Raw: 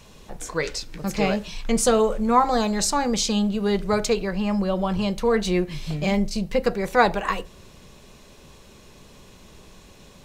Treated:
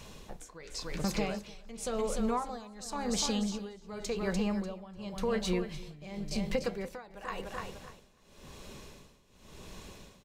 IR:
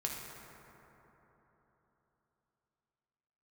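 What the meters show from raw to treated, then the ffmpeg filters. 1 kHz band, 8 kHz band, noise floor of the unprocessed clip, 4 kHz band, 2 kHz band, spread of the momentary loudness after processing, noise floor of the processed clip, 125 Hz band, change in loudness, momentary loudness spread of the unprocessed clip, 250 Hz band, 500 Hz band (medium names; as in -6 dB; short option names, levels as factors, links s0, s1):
-15.5 dB, -11.0 dB, -49 dBFS, -10.0 dB, -14.0 dB, 18 LU, -60 dBFS, -10.5 dB, -12.0 dB, 9 LU, -11.0 dB, -12.5 dB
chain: -af "acompressor=threshold=0.0398:ratio=6,aecho=1:1:296|592|888|1184|1480:0.355|0.16|0.0718|0.0323|0.0145,tremolo=f=0.92:d=0.89"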